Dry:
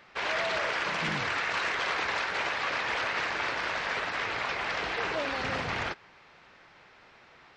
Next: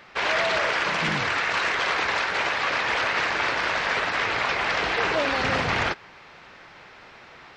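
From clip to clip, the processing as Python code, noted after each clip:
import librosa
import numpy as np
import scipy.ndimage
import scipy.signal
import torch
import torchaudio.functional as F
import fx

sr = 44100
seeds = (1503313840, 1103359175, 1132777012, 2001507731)

y = fx.rider(x, sr, range_db=10, speed_s=2.0)
y = y * librosa.db_to_amplitude(6.5)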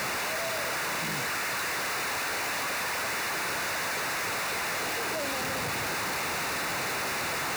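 y = np.sign(x) * np.sqrt(np.mean(np.square(x)))
y = scipy.signal.sosfilt(scipy.signal.butter(2, 80.0, 'highpass', fs=sr, output='sos'), y)
y = fx.notch(y, sr, hz=3200.0, q=6.1)
y = y * librosa.db_to_amplitude(-5.0)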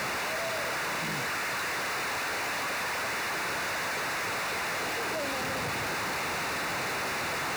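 y = fx.high_shelf(x, sr, hz=6600.0, db=-6.5)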